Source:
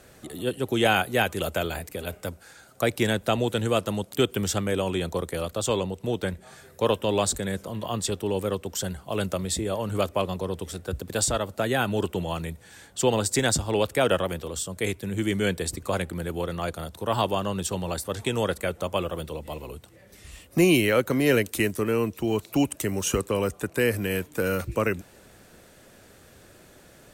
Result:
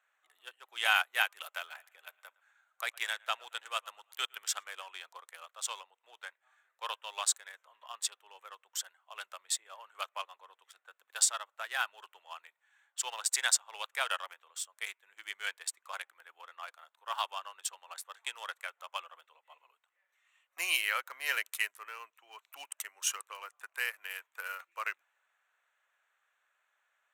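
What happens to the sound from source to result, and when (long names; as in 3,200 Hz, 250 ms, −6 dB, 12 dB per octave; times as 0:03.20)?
0:01.57–0:04.88: feedback echo with a high-pass in the loop 112 ms, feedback 50%, level −15.5 dB
whole clip: adaptive Wiener filter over 9 samples; high-pass filter 1,000 Hz 24 dB per octave; expander for the loud parts 1.5 to 1, over −53 dBFS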